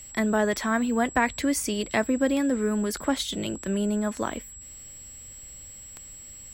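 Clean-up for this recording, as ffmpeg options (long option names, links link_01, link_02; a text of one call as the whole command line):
ffmpeg -i in.wav -af "adeclick=threshold=4,bandreject=frequency=7700:width=30" out.wav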